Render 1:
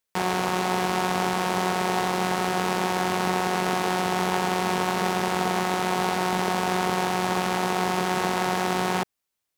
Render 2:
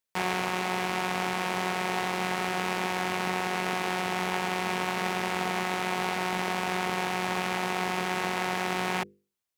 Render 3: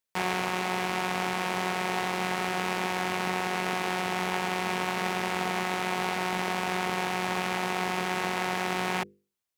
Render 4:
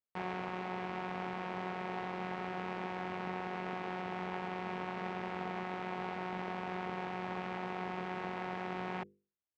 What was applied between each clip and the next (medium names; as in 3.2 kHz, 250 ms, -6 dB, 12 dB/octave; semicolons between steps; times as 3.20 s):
hum notches 50/100/150/200/250/300/350/400/450/500 Hz; dynamic bell 2.3 kHz, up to +7 dB, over -45 dBFS, Q 1.5; gain riding; trim -6 dB
no audible change
tape spacing loss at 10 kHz 31 dB; trim -7 dB